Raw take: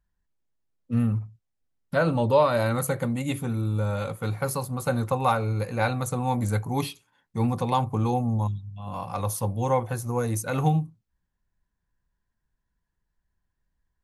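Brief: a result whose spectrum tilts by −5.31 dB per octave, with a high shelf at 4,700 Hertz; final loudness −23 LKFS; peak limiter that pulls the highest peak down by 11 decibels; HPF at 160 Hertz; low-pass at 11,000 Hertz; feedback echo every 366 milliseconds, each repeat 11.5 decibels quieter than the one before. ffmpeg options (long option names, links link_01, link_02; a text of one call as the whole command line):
ffmpeg -i in.wav -af "highpass=160,lowpass=11000,highshelf=frequency=4700:gain=-6,alimiter=limit=-20dB:level=0:latency=1,aecho=1:1:366|732|1098:0.266|0.0718|0.0194,volume=8.5dB" out.wav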